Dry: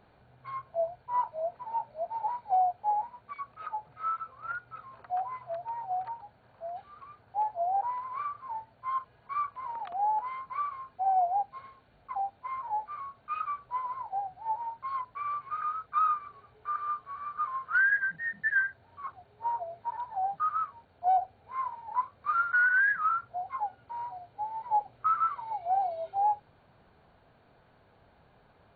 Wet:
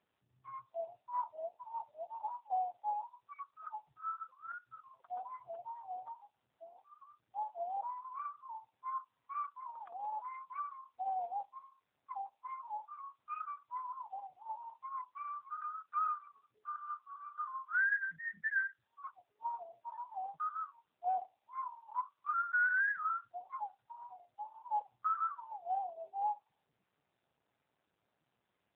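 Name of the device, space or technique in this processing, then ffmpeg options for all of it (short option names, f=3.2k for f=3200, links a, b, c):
mobile call with aggressive noise cancelling: -af "highpass=f=100:w=0.5412,highpass=f=100:w=1.3066,afftdn=nr=27:nf=-44,volume=-6dB" -ar 8000 -c:a libopencore_amrnb -b:a 7950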